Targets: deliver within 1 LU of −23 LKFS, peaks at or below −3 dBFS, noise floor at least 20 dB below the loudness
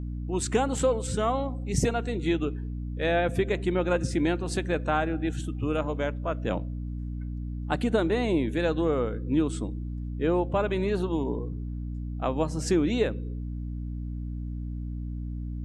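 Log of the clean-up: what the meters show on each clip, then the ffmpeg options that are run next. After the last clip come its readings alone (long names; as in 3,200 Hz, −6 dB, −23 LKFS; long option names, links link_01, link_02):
mains hum 60 Hz; hum harmonics up to 300 Hz; level of the hum −31 dBFS; integrated loudness −28.5 LKFS; sample peak −12.0 dBFS; target loudness −23.0 LKFS
→ -af "bandreject=frequency=60:width_type=h:width=6,bandreject=frequency=120:width_type=h:width=6,bandreject=frequency=180:width_type=h:width=6,bandreject=frequency=240:width_type=h:width=6,bandreject=frequency=300:width_type=h:width=6"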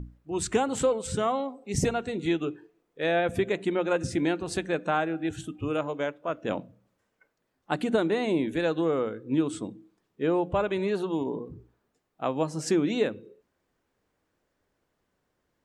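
mains hum none found; integrated loudness −28.5 LKFS; sample peak −12.0 dBFS; target loudness −23.0 LKFS
→ -af "volume=5.5dB"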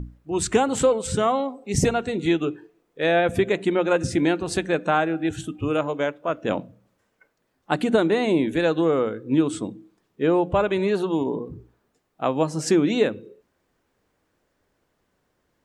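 integrated loudness −23.0 LKFS; sample peak −6.5 dBFS; background noise floor −72 dBFS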